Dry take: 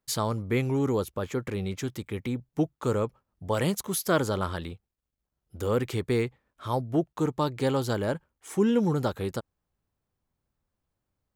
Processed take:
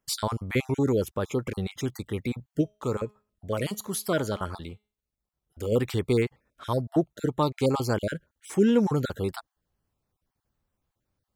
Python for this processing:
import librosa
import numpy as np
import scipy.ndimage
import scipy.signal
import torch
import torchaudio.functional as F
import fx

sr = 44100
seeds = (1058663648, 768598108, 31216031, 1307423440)

y = fx.spec_dropout(x, sr, seeds[0], share_pct=24)
y = fx.comb_fb(y, sr, f0_hz=210.0, decay_s=0.41, harmonics='all', damping=0.0, mix_pct=40, at=(2.61, 5.72))
y = y * 10.0 ** (2.5 / 20.0)